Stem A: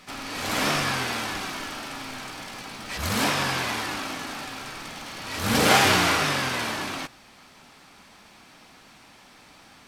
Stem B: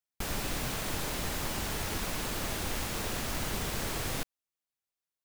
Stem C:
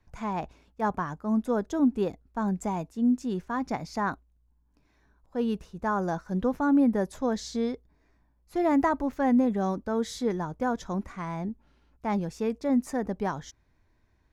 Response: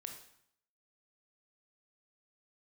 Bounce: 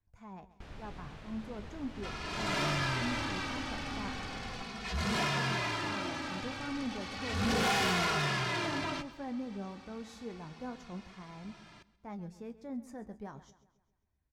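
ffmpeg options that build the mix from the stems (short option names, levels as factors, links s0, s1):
-filter_complex "[0:a]lowpass=5600,asplit=2[s0][s1];[s1]adelay=2.4,afreqshift=-0.33[s2];[s0][s2]amix=inputs=2:normalize=1,adelay=1950,volume=0.596,asplit=2[s3][s4];[s4]volume=0.0944[s5];[1:a]lowpass=3400,adelay=400,volume=0.168[s6];[2:a]flanger=delay=9.5:depth=5.6:regen=63:speed=0.26:shape=triangular,volume=0.178,asplit=2[s7][s8];[s8]volume=0.158[s9];[s5][s9]amix=inputs=2:normalize=0,aecho=0:1:133|266|399|532|665|798|931:1|0.48|0.23|0.111|0.0531|0.0255|0.0122[s10];[s3][s6][s7][s10]amix=inputs=4:normalize=0,equalizer=f=62:w=0.43:g=6.5,dynaudnorm=f=370:g=11:m=1.41,asoftclip=type=tanh:threshold=0.0473"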